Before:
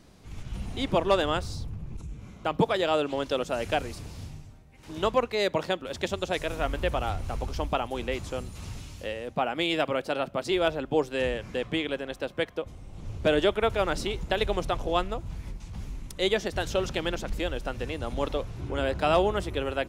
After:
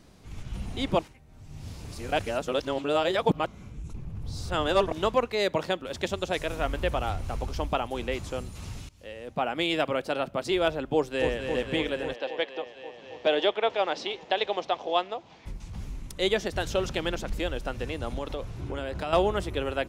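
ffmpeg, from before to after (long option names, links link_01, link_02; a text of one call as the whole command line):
ffmpeg -i in.wav -filter_complex "[0:a]asplit=2[link_01][link_02];[link_02]afade=type=in:start_time=10.94:duration=0.01,afade=type=out:start_time=11.47:duration=0.01,aecho=0:1:270|540|810|1080|1350|1620|1890|2160|2430|2700|2970|3240:0.473151|0.378521|0.302817|0.242253|0.193803|0.155042|0.124034|0.099227|0.0793816|0.0635053|0.0508042|0.0406434[link_03];[link_01][link_03]amix=inputs=2:normalize=0,asplit=3[link_04][link_05][link_06];[link_04]afade=type=out:start_time=12.13:duration=0.02[link_07];[link_05]highpass=400,equalizer=frequency=770:width_type=q:width=4:gain=5,equalizer=frequency=1400:width_type=q:width=4:gain=-5,equalizer=frequency=3300:width_type=q:width=4:gain=3,lowpass=frequency=5500:width=0.5412,lowpass=frequency=5500:width=1.3066,afade=type=in:start_time=12.13:duration=0.02,afade=type=out:start_time=15.45:duration=0.02[link_08];[link_06]afade=type=in:start_time=15.45:duration=0.02[link_09];[link_07][link_08][link_09]amix=inputs=3:normalize=0,asettb=1/sr,asplit=3[link_10][link_11][link_12];[link_10]atrim=end=18.174[link_13];[link_11]atrim=start=18.17:end=19.13,asetpts=PTS-STARTPTS,afade=type=in:duration=0.004:curve=qsin,afade=type=out:start_time=0.956:duration=0.004:curve=qsin,acompressor=threshold=-28dB:ratio=6:attack=3.2:release=140:knee=1:detection=peak[link_14];[link_12]atrim=start=19.126[link_15];[link_13][link_14]acrossfade=duration=0.004:curve1=hsin:curve2=qsin[link_16];[link_16][link_15]acrossfade=duration=0.004:curve1=qsin:curve2=hsin,asplit=4[link_17][link_18][link_19][link_20];[link_17]atrim=end=0.992[link_21];[link_18]atrim=start=0.988:end=4.922,asetpts=PTS-STARTPTS,areverse[link_22];[link_19]atrim=start=4.918:end=8.89,asetpts=PTS-STARTPTS,afade=type=out:start_time=3.968:duration=0.004:curve=hsin:silence=0.0841395[link_23];[link_20]atrim=start=8.89,asetpts=PTS-STARTPTS,afade=type=in:duration=0.59:silence=0.0841395[link_24];[link_21][link_22]acrossfade=duration=0.004:curve1=hsin:curve2=hsin[link_25];[link_23][link_24]concat=n=2:v=0:a=1[link_26];[link_25][link_26]acrossfade=duration=0.004:curve1=hsin:curve2=hsin" out.wav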